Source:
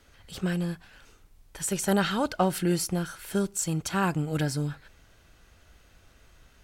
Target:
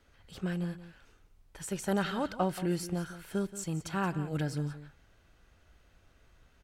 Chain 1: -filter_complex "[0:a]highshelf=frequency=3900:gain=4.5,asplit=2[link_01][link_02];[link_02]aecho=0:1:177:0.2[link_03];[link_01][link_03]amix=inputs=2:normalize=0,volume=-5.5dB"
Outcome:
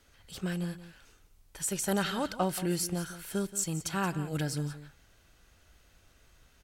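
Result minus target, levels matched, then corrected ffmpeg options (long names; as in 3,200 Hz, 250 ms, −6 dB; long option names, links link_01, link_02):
8,000 Hz band +8.0 dB
-filter_complex "[0:a]highshelf=frequency=3900:gain=-7,asplit=2[link_01][link_02];[link_02]aecho=0:1:177:0.2[link_03];[link_01][link_03]amix=inputs=2:normalize=0,volume=-5.5dB"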